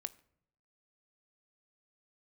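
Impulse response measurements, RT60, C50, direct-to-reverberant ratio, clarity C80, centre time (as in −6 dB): 0.70 s, 20.5 dB, 13.5 dB, 23.5 dB, 2 ms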